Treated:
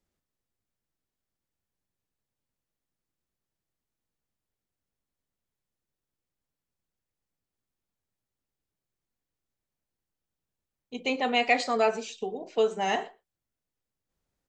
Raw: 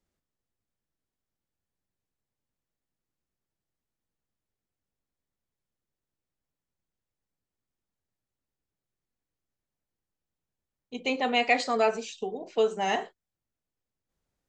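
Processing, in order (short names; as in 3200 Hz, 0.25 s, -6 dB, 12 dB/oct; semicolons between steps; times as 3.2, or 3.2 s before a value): speakerphone echo 0.12 s, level -22 dB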